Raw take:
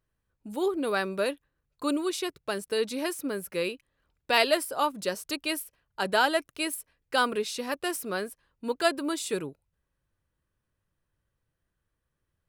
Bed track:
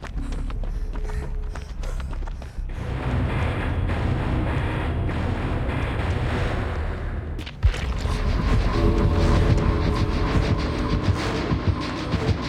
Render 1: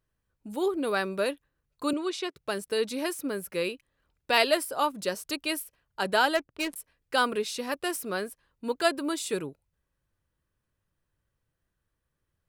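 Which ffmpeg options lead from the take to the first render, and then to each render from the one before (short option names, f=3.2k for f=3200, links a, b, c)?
-filter_complex "[0:a]asettb=1/sr,asplit=3[a][b][c];[a]atrim=end=1.934[d];[b]atrim=start=1.93:end=2.36,asetpts=PTS-STARTPTS,afade=t=in:d=0.004:c=qsin,afade=t=out:st=0.426:d=0.004:c=qsin,highpass=290,lowpass=5.7k[e];[c]atrim=start=2.356[f];[d][e]acrossfade=d=0.004:c1=hsin:c2=qsin[g];[g][f]acrossfade=d=0.004:c1=qsin:c2=hsin,asettb=1/sr,asplit=3[h][i][j];[h]atrim=end=6.354[k];[i]atrim=start=6.35:end=6.76,asetpts=PTS-STARTPTS,afade=t=in:d=0.004:c=qsin,afade=t=out:st=0.406:d=0.004:c=qsin,adynamicsmooth=sensitivity=7.5:basefreq=530[l];[j]atrim=start=6.756[m];[k][l]acrossfade=d=0.004:c1=hsin:c2=qsin[n];[n][m]acrossfade=d=0.004:c1=qsin:c2=hsin"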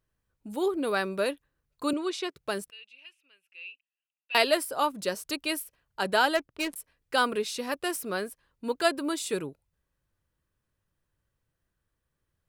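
-filter_complex "[0:a]asettb=1/sr,asplit=3[a][b][c];[a]atrim=end=2.704[d];[b]atrim=start=2.7:end=4.35,asetpts=PTS-STARTPTS,afade=t=in:d=0.004:c=qsin,afade=t=out:st=1.646:d=0.004:c=qsin,bandpass=f=2.7k:t=q:w=17[e];[c]atrim=start=4.346[f];[d][e]acrossfade=d=0.004:c1=hsin:c2=qsin[g];[g][f]acrossfade=d=0.004:c1=qsin:c2=hsin"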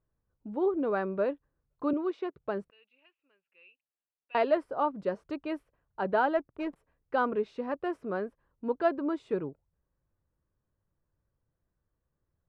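-af "lowpass=1.1k"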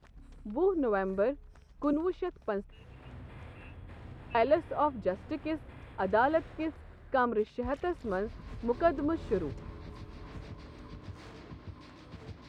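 -filter_complex "[1:a]volume=-24dB[a];[0:a][a]amix=inputs=2:normalize=0"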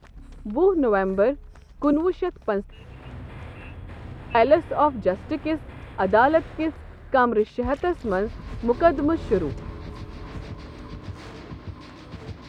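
-af "volume=9dB"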